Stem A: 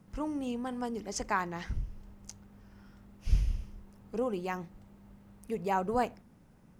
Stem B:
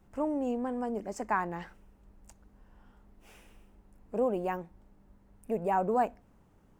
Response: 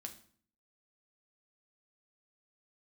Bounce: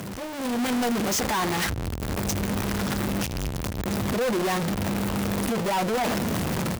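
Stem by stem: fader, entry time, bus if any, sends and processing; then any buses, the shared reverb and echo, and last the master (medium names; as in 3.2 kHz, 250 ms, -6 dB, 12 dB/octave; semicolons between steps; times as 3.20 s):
+2.0 dB, 0.00 s, no send, one-bit comparator; high-pass 55 Hz 24 dB/octave
-4.0 dB, 7.9 ms, no send, none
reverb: none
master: hard clipper -31 dBFS, distortion -11 dB; level rider gain up to 9 dB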